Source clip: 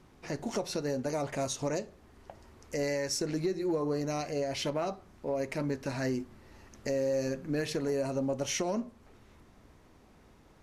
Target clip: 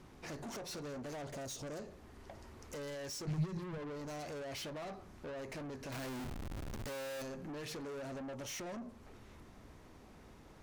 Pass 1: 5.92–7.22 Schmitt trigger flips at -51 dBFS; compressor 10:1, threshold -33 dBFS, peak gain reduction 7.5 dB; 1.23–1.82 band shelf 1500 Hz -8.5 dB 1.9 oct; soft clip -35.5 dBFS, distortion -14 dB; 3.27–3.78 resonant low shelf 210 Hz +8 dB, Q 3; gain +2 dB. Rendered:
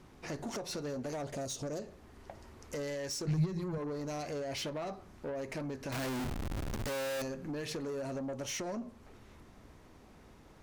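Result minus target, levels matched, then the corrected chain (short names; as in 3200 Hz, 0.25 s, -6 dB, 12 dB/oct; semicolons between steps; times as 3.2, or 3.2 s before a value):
soft clip: distortion -7 dB
5.92–7.22 Schmitt trigger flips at -51 dBFS; compressor 10:1, threshold -33 dBFS, peak gain reduction 7.5 dB; 1.23–1.82 band shelf 1500 Hz -8.5 dB 1.9 oct; soft clip -44 dBFS, distortion -7 dB; 3.27–3.78 resonant low shelf 210 Hz +8 dB, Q 3; gain +2 dB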